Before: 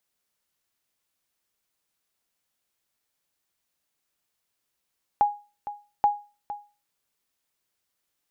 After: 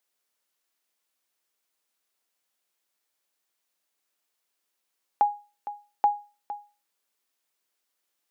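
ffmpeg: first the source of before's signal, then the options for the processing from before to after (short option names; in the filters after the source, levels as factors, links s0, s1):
-f lavfi -i "aevalsrc='0.237*(sin(2*PI*825*mod(t,0.83))*exp(-6.91*mod(t,0.83)/0.32)+0.2*sin(2*PI*825*max(mod(t,0.83)-0.46,0))*exp(-6.91*max(mod(t,0.83)-0.46,0)/0.32))':d=1.66:s=44100"
-af "highpass=280"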